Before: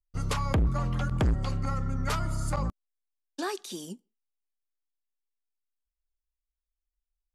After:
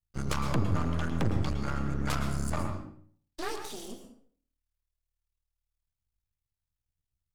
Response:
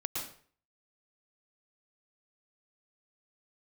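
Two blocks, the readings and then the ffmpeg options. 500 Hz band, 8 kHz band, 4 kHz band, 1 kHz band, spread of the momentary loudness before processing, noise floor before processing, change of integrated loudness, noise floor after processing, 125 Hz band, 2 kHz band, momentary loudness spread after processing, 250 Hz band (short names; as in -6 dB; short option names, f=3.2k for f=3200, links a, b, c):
-1.5 dB, -1.5 dB, -1.5 dB, -2.0 dB, 13 LU, under -85 dBFS, -2.0 dB, under -85 dBFS, -2.5 dB, 0.0 dB, 13 LU, +0.5 dB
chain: -filter_complex "[0:a]bandreject=f=57.43:t=h:w=4,bandreject=f=114.86:t=h:w=4,bandreject=f=172.29:t=h:w=4,bandreject=f=229.72:t=h:w=4,bandreject=f=287.15:t=h:w=4,bandreject=f=344.58:t=h:w=4,bandreject=f=402.01:t=h:w=4,bandreject=f=459.44:t=h:w=4,bandreject=f=516.87:t=h:w=4,bandreject=f=574.3:t=h:w=4,bandreject=f=631.73:t=h:w=4,bandreject=f=689.16:t=h:w=4,bandreject=f=746.59:t=h:w=4,bandreject=f=804.02:t=h:w=4,afreqshift=38,aeval=exprs='max(val(0),0)':c=same,asplit=2[a][b];[1:a]atrim=start_sample=2205[c];[b][c]afir=irnorm=-1:irlink=0,volume=-4dB[d];[a][d]amix=inputs=2:normalize=0,volume=-2.5dB"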